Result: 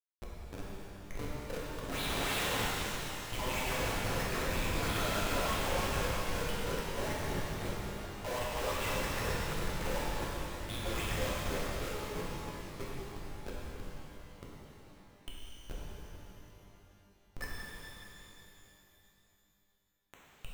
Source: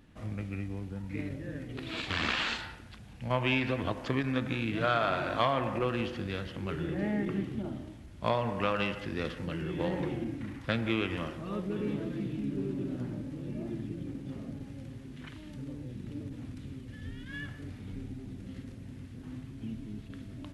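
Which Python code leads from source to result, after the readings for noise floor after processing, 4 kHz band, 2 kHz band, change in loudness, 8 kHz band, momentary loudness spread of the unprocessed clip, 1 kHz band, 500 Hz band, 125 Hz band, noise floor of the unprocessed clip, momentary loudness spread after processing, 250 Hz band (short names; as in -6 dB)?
-70 dBFS, 0.0 dB, -2.0 dB, -2.0 dB, n/a, 15 LU, -2.5 dB, -3.5 dB, -5.0 dB, -48 dBFS, 19 LU, -9.0 dB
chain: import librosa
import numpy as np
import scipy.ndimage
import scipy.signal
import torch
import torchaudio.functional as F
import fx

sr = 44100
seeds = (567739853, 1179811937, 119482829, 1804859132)

y = fx.high_shelf(x, sr, hz=4100.0, db=-5.0)
y = fx.filter_lfo_highpass(y, sr, shape='sine', hz=3.1, low_hz=470.0, high_hz=4000.0, q=6.0)
y = fx.schmitt(y, sr, flips_db=-33.0)
y = fx.rev_shimmer(y, sr, seeds[0], rt60_s=3.2, semitones=12, shimmer_db=-8, drr_db=-6.0)
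y = F.gain(torch.from_numpy(y), -7.0).numpy()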